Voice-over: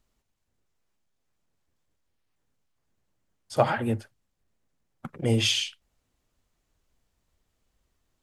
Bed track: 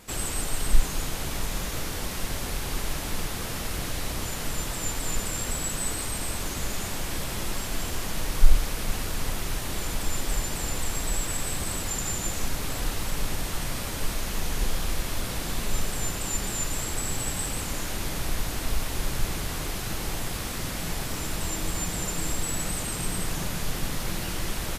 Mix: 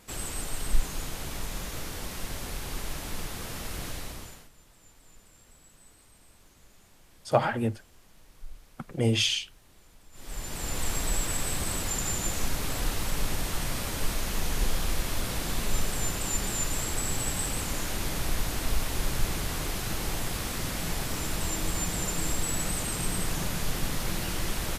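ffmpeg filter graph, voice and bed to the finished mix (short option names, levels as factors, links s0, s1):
-filter_complex "[0:a]adelay=3750,volume=0.891[s0];[1:a]volume=11.9,afade=t=out:st=3.89:d=0.6:silence=0.0794328,afade=t=in:st=10.12:d=0.76:silence=0.0473151[s1];[s0][s1]amix=inputs=2:normalize=0"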